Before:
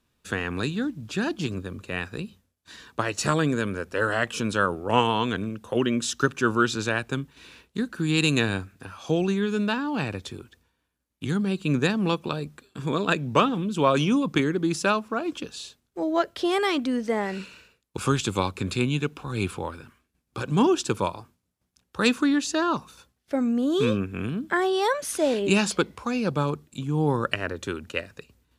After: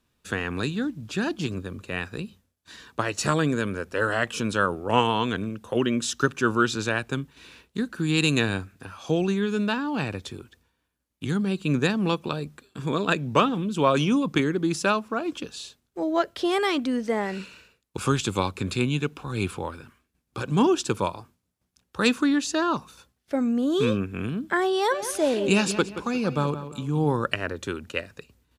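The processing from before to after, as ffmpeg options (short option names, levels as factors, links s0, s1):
-filter_complex "[0:a]asplit=3[s0][s1][s2];[s0]afade=t=out:st=24.9:d=0.02[s3];[s1]asplit=2[s4][s5];[s5]adelay=176,lowpass=f=3400:p=1,volume=0.266,asplit=2[s6][s7];[s7]adelay=176,lowpass=f=3400:p=1,volume=0.36,asplit=2[s8][s9];[s9]adelay=176,lowpass=f=3400:p=1,volume=0.36,asplit=2[s10][s11];[s11]adelay=176,lowpass=f=3400:p=1,volume=0.36[s12];[s4][s6][s8][s10][s12]amix=inputs=5:normalize=0,afade=t=in:st=24.9:d=0.02,afade=t=out:st=27.12:d=0.02[s13];[s2]afade=t=in:st=27.12:d=0.02[s14];[s3][s13][s14]amix=inputs=3:normalize=0"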